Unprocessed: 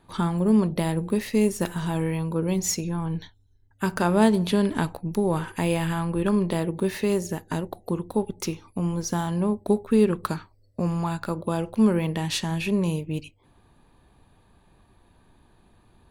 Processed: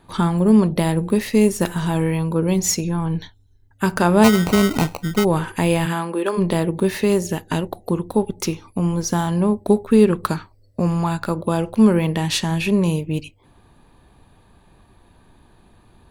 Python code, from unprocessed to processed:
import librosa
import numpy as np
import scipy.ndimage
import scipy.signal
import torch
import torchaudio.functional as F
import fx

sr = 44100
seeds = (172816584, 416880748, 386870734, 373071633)

y = fx.sample_hold(x, sr, seeds[0], rate_hz=1700.0, jitter_pct=0, at=(4.23, 5.23), fade=0.02)
y = fx.highpass(y, sr, hz=fx.line((5.85, 150.0), (6.37, 400.0)), slope=24, at=(5.85, 6.37), fade=0.02)
y = fx.peak_eq(y, sr, hz=3000.0, db=6.5, octaves=0.63, at=(7.27, 7.69))
y = F.gain(torch.from_numpy(y), 6.0).numpy()